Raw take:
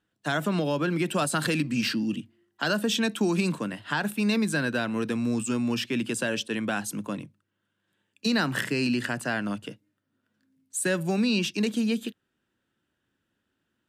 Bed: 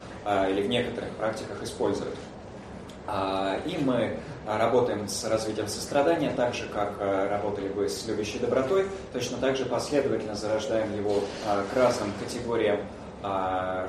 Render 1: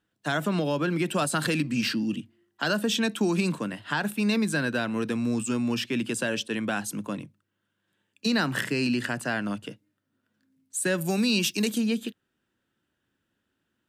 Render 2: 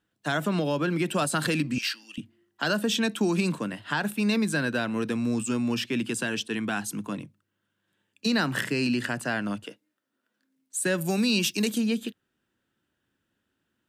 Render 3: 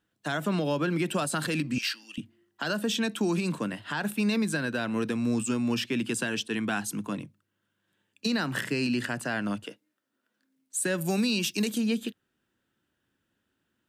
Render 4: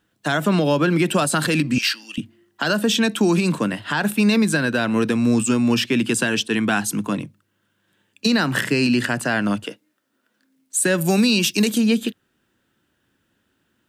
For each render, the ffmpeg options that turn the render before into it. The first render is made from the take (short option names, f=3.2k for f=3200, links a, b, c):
-filter_complex "[0:a]asettb=1/sr,asplit=3[a][b][c];[a]atrim=end=10.984[d];[b]atrim=start=10.98:end=11.78,asetpts=PTS-STARTPTS,afade=t=in:d=0.004:c=qsin,afade=t=out:st=0.796:d=0.004:c=qsin,aemphasis=mode=production:type=50fm[e];[c]atrim=start=11.776[f];[d][e]acrossfade=d=0.004:c1=hsin:c2=qsin[g];[g][f]acrossfade=d=0.004:c1=qsin:c2=hsin"
-filter_complex "[0:a]asettb=1/sr,asplit=3[a][b][c];[a]atrim=end=1.784[d];[b]atrim=start=1.78:end=2.18,asetpts=PTS-STARTPTS,afade=t=in:d=0.004:c=qsin,afade=t=out:st=0.396:d=0.004:c=qsin,highpass=1.4k[e];[c]atrim=start=2.176[f];[d][e]acrossfade=d=0.004:c1=hsin:c2=qsin[g];[g][f]acrossfade=d=0.004:c1=qsin:c2=hsin,asettb=1/sr,asplit=3[h][i][j];[h]atrim=end=6.044[k];[i]atrim=start=6.04:end=7.12,asetpts=PTS-STARTPTS,afade=t=in:d=0.004:c=qsin,afade=t=out:st=1.076:d=0.004:c=qsin,equalizer=f=560:w=6.8:g=-11.5[l];[j]atrim=start=7.116[m];[k][l]acrossfade=d=0.004:c1=hsin:c2=qsin[n];[n][m]acrossfade=d=0.004:c1=qsin:c2=hsin,asettb=1/sr,asplit=3[o][p][q];[o]atrim=end=9.644[r];[p]atrim=start=9.64:end=10.76,asetpts=PTS-STARTPTS,afade=t=in:d=0.004:c=qsin,afade=t=out:st=1.116:d=0.004:c=qsin,highpass=330[s];[q]atrim=start=10.756[t];[r][s]acrossfade=d=0.004:c1=hsin:c2=qsin[u];[u][t]acrossfade=d=0.004:c1=qsin:c2=hsin"
-af "alimiter=limit=-18.5dB:level=0:latency=1:release=178"
-af "volume=9.5dB"